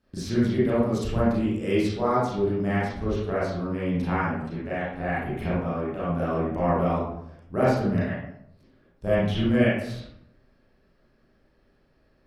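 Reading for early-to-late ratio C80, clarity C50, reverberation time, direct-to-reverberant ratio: 3.5 dB, -2.0 dB, 0.75 s, -10.0 dB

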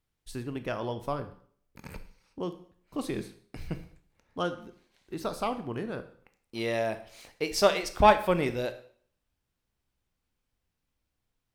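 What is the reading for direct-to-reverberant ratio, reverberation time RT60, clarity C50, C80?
10.0 dB, 0.55 s, 13.0 dB, 16.5 dB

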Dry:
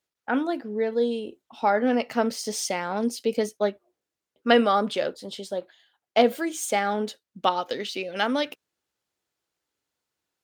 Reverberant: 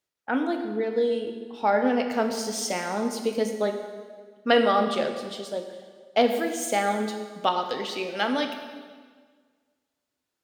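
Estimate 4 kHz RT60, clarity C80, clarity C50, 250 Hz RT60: 1.4 s, 8.0 dB, 7.0 dB, 1.7 s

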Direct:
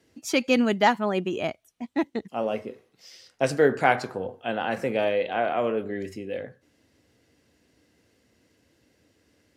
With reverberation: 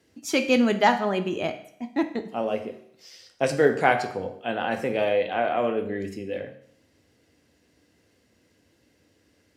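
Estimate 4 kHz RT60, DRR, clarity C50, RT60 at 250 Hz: 0.65 s, 7.5 dB, 12.0 dB, 0.65 s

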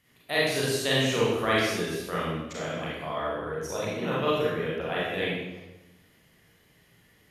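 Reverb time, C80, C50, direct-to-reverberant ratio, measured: 1.1 s, 1.0 dB, -2.0 dB, -7.5 dB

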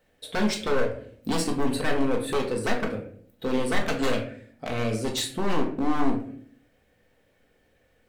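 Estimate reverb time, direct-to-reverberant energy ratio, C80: 0.55 s, 0.0 dB, 12.5 dB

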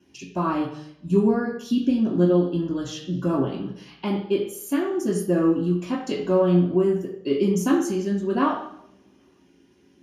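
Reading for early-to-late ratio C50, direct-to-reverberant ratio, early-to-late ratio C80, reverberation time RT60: 5.0 dB, -7.5 dB, 8.0 dB, 0.75 s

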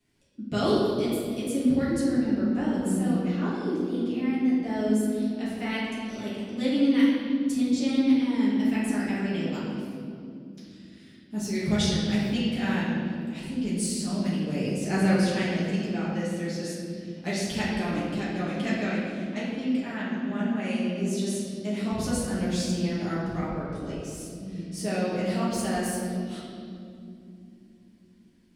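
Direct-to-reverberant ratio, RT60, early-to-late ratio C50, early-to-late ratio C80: -10.0 dB, 2.7 s, -1.5 dB, 1.0 dB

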